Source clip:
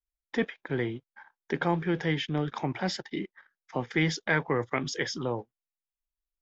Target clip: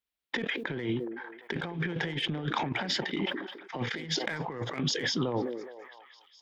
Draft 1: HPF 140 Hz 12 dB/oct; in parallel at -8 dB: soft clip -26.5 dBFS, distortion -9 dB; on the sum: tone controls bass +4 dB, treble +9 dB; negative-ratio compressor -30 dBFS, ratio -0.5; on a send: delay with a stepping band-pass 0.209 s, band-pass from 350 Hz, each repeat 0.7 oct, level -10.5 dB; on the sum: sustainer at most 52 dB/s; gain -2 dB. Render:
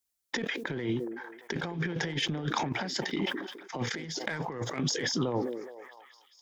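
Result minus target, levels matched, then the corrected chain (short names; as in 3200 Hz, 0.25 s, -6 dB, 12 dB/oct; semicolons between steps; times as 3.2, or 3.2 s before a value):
8000 Hz band +4.0 dB
HPF 140 Hz 12 dB/oct; resonant high shelf 4500 Hz -11 dB, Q 1.5; in parallel at -8 dB: soft clip -26.5 dBFS, distortion -8 dB; on the sum: tone controls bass +4 dB, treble +9 dB; negative-ratio compressor -30 dBFS, ratio -0.5; on a send: delay with a stepping band-pass 0.209 s, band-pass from 350 Hz, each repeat 0.7 oct, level -10.5 dB; on the sum: sustainer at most 52 dB/s; gain -2 dB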